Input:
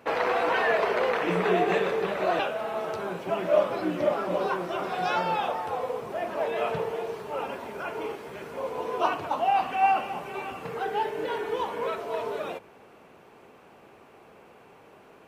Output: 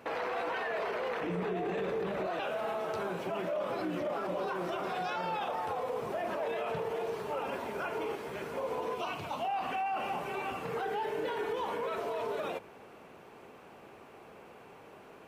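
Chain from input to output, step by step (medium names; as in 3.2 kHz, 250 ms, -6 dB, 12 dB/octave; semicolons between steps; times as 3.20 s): 1.20–2.27 s: bass shelf 440 Hz +10 dB; 8.95–9.45 s: time-frequency box 250–2000 Hz -7 dB; peak limiter -27 dBFS, peak gain reduction 19 dB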